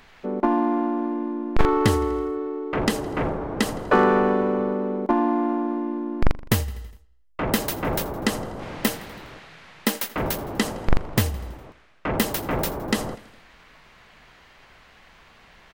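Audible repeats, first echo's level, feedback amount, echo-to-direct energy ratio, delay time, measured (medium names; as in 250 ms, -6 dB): 4, -20.0 dB, 60%, -18.0 dB, 82 ms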